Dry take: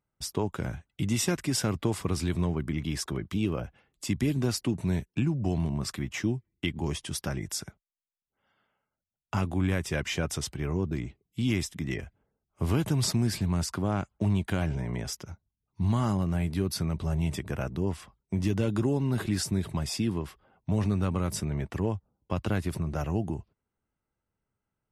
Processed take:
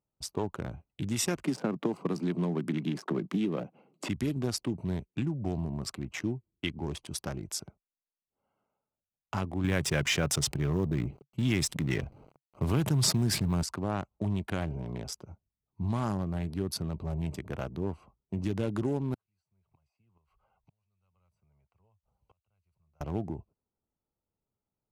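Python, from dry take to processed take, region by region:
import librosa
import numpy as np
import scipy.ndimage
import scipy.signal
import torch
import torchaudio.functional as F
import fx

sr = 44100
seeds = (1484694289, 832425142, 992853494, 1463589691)

y = fx.chain(x, sr, fx.steep_highpass(hz=160.0, slope=36),
    fx.tilt_eq(slope=-2.0),
    fx.band_squash(depth_pct=100), at=(1.44, 4.09))
y = fx.chain(y, sr, fx.law_mismatch(coded='A'),
    fx.peak_eq(hz=140.0, db=7.0, octaves=0.49),
    fx.env_flatten(amount_pct=50), at=(9.64, 13.63))
y = fx.chain(y, sr, fx.tone_stack(knobs='10-0-10'),
    fx.gate_flip(shuts_db=-38.0, range_db=-32),
    fx.band_squash(depth_pct=100), at=(19.14, 23.01))
y = fx.wiener(y, sr, points=25)
y = fx.low_shelf(y, sr, hz=310.0, db=-6.0)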